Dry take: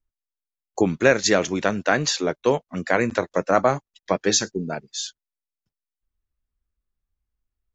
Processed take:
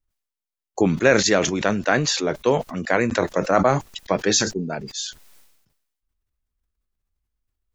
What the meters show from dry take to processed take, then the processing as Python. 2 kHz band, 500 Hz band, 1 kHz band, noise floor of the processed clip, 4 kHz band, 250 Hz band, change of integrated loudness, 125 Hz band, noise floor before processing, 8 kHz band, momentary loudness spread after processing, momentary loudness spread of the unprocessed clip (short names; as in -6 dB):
+1.0 dB, +1.0 dB, +1.0 dB, under -85 dBFS, +2.0 dB, +2.0 dB, +1.5 dB, +3.5 dB, under -85 dBFS, n/a, 12 LU, 11 LU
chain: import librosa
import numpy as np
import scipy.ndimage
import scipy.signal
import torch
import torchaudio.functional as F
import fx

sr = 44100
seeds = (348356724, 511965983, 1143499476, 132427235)

y = fx.sustainer(x, sr, db_per_s=57.0)